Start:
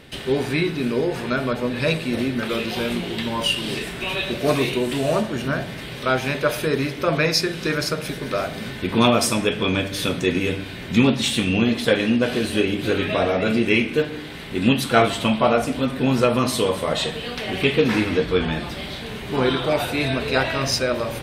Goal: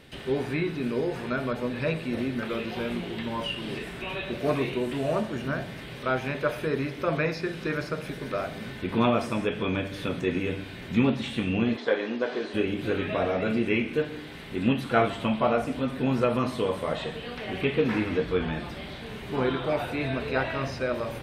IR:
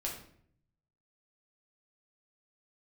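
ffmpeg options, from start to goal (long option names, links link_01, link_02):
-filter_complex "[0:a]asplit=3[link_01][link_02][link_03];[link_01]afade=type=out:start_time=11.76:duration=0.02[link_04];[link_02]highpass=360,equalizer=frequency=400:width_type=q:width=4:gain=4,equalizer=frequency=950:width_type=q:width=4:gain=4,equalizer=frequency=2700:width_type=q:width=4:gain=-7,lowpass=frequency=6300:width=0.5412,lowpass=frequency=6300:width=1.3066,afade=type=in:start_time=11.76:duration=0.02,afade=type=out:start_time=12.53:duration=0.02[link_05];[link_03]afade=type=in:start_time=12.53:duration=0.02[link_06];[link_04][link_05][link_06]amix=inputs=3:normalize=0,acrossover=split=2800[link_07][link_08];[link_08]acompressor=threshold=-43dB:ratio=4:attack=1:release=60[link_09];[link_07][link_09]amix=inputs=2:normalize=0,volume=-6dB"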